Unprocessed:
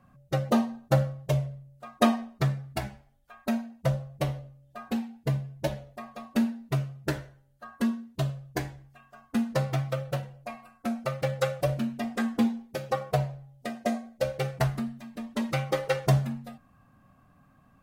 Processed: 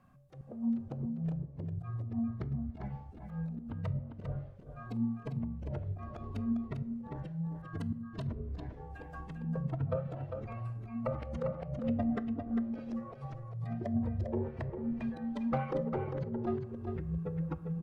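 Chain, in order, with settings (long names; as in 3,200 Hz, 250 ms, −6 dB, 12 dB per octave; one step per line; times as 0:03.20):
in parallel at −7.5 dB: wrap-around overflow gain 20 dB
on the sum: noise reduction from a noise print of the clip's start 13 dB
treble cut that deepens with the level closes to 350 Hz, closed at −24 dBFS
compressor whose output falls as the input rises −33 dBFS, ratio −1
volume swells 246 ms
delay with pitch and tempo change per echo 300 ms, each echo −6 semitones, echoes 2
single-tap delay 400 ms −6.5 dB
on a send at −14.5 dB: convolution reverb RT60 0.85 s, pre-delay 3 ms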